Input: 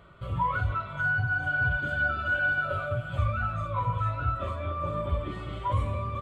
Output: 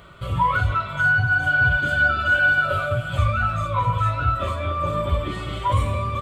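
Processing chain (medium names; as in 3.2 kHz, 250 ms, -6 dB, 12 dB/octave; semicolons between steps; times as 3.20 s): treble shelf 3 kHz +11 dB; trim +6.5 dB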